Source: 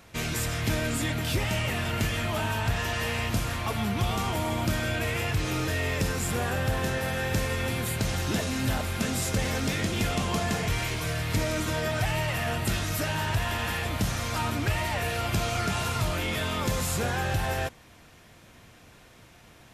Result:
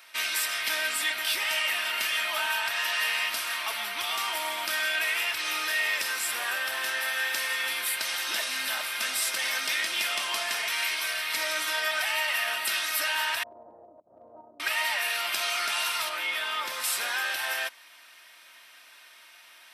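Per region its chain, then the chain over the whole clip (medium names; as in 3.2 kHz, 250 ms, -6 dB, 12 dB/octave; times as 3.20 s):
13.43–14.60 s: steep low-pass 630 Hz + compressor with a negative ratio -33 dBFS, ratio -0.5
16.09–16.84 s: treble shelf 2.7 kHz -8 dB + doubling 25 ms -13 dB
whole clip: high-pass 1.4 kHz 12 dB/octave; peaking EQ 6.9 kHz -12 dB 0.21 oct; comb 3.2 ms, depth 38%; trim +5.5 dB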